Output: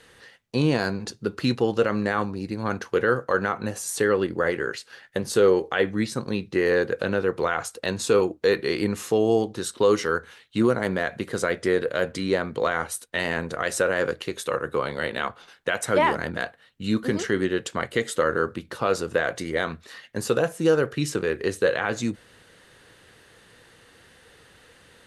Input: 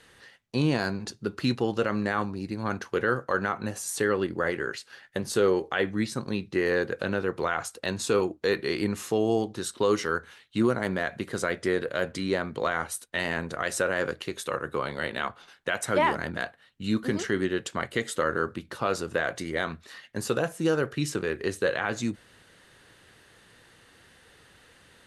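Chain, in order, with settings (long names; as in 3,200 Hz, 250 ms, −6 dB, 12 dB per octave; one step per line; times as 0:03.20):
parametric band 480 Hz +4.5 dB 0.29 octaves
level +2.5 dB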